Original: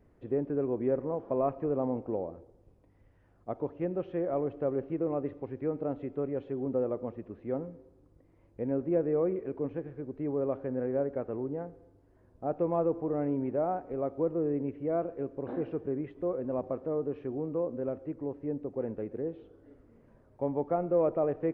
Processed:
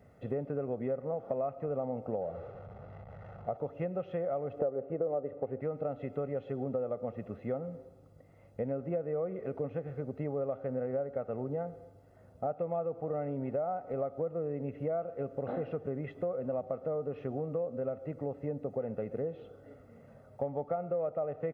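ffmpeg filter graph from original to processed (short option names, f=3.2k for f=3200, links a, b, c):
-filter_complex "[0:a]asettb=1/sr,asplit=3[a][b][c];[a]atrim=end=2.214[d];[b]atrim=start=2.21:end=3.57,asetpts=PTS-STARTPTS,afade=t=in:d=0.004:c=qsin,afade=t=out:st=1.356:d=0.004:c=qsin,aeval=exprs='val(0)+0.5*0.00447*sgn(val(0))':c=same,lowpass=1.1k,equalizer=f=270:t=o:w=0.37:g=-10.5[e];[c]atrim=start=3.566[f];[d][e]acrossfade=d=0.004:c1=hsin:c2=qsin[g];[g][f]acrossfade=d=0.004:c1=qsin:c2=hsin,asettb=1/sr,asplit=3[h][i][j];[h]atrim=end=4.594[k];[i]atrim=start=4.59:end=5.61,asetpts=PTS-STARTPTS,afade=t=in:d=0.004:c=qsin,afade=t=out:st=1.016:d=0.004:c=qsin,lowpass=2.1k,equalizer=f=480:t=o:w=2:g=11.5[l];[j]atrim=start=5.606[m];[k][l]acrossfade=d=0.004:c1=hsin:c2=qsin[n];[n][m]acrossfade=d=0.004:c1=qsin:c2=hsin,highpass=110,aecho=1:1:1.5:0.72,acompressor=threshold=-37dB:ratio=6,volume=5.5dB"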